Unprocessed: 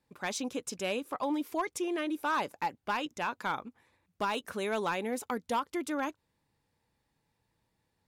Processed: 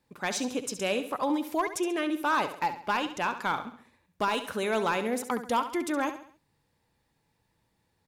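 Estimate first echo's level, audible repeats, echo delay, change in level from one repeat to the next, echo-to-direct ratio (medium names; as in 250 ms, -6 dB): -11.0 dB, 4, 68 ms, -7.5 dB, -10.0 dB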